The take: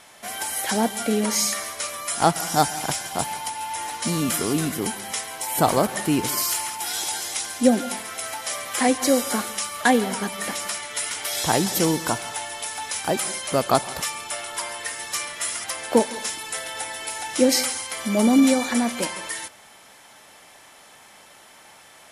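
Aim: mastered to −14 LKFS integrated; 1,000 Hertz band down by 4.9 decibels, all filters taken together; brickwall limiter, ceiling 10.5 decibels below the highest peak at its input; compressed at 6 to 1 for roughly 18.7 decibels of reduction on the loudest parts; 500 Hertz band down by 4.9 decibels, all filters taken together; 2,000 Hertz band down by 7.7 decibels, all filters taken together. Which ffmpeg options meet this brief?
ffmpeg -i in.wav -af "equalizer=frequency=500:width_type=o:gain=-4.5,equalizer=frequency=1000:width_type=o:gain=-3,equalizer=frequency=2000:width_type=o:gain=-8.5,acompressor=threshold=-35dB:ratio=6,volume=23.5dB,alimiter=limit=-4.5dB:level=0:latency=1" out.wav

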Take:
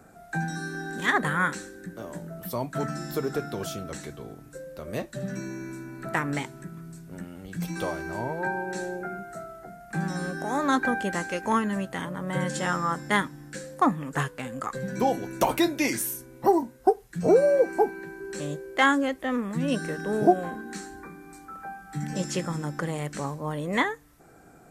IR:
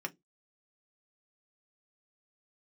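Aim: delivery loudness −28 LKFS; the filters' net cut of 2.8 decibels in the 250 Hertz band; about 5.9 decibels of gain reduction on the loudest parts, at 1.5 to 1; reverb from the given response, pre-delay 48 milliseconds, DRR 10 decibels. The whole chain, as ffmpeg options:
-filter_complex "[0:a]equalizer=frequency=250:width_type=o:gain=-4,acompressor=threshold=-31dB:ratio=1.5,asplit=2[link_01][link_02];[1:a]atrim=start_sample=2205,adelay=48[link_03];[link_02][link_03]afir=irnorm=-1:irlink=0,volume=-12dB[link_04];[link_01][link_04]amix=inputs=2:normalize=0,volume=4dB"

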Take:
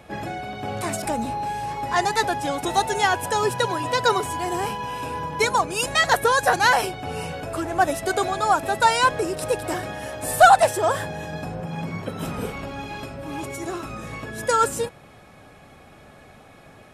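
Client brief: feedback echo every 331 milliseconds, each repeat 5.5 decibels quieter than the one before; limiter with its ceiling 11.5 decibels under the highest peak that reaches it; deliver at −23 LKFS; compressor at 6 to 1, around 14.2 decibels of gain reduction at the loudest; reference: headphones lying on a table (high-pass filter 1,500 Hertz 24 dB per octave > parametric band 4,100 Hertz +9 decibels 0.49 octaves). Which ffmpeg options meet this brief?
ffmpeg -i in.wav -af "acompressor=threshold=-24dB:ratio=6,alimiter=level_in=0.5dB:limit=-24dB:level=0:latency=1,volume=-0.5dB,highpass=frequency=1500:width=0.5412,highpass=frequency=1500:width=1.3066,equalizer=frequency=4100:width_type=o:width=0.49:gain=9,aecho=1:1:331|662|993|1324|1655|1986|2317:0.531|0.281|0.149|0.079|0.0419|0.0222|0.0118,volume=13dB" out.wav

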